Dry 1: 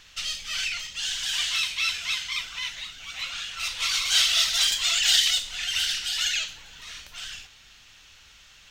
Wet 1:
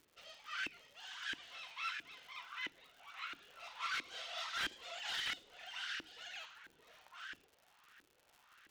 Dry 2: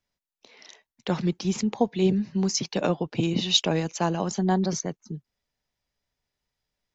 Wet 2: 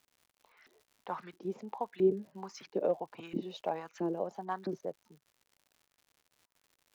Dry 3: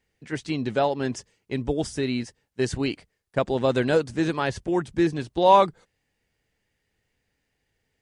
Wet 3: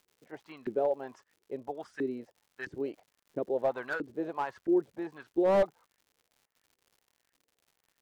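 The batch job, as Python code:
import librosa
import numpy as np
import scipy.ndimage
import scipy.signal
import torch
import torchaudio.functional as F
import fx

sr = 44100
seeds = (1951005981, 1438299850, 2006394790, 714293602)

y = fx.filter_lfo_bandpass(x, sr, shape='saw_up', hz=1.5, low_hz=300.0, high_hz=1700.0, q=3.6)
y = fx.dmg_crackle(y, sr, seeds[0], per_s=140.0, level_db=-53.0)
y = fx.slew_limit(y, sr, full_power_hz=52.0)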